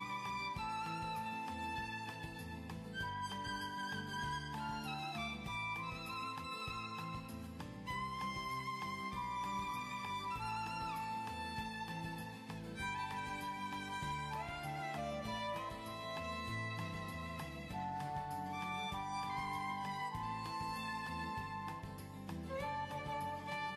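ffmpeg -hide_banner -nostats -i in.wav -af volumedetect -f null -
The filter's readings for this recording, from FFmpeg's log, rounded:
mean_volume: -42.9 dB
max_volume: -31.1 dB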